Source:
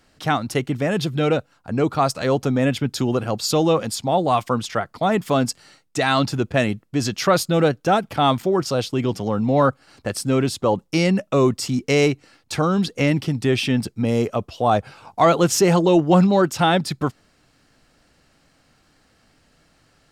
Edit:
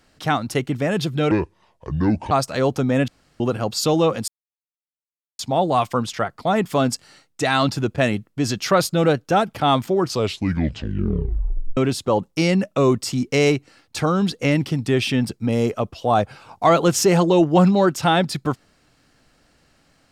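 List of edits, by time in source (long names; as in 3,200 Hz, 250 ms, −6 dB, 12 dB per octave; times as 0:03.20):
0:01.31–0:01.98: play speed 67%
0:02.75–0:03.07: fill with room tone
0:03.95: splice in silence 1.11 s
0:08.57: tape stop 1.76 s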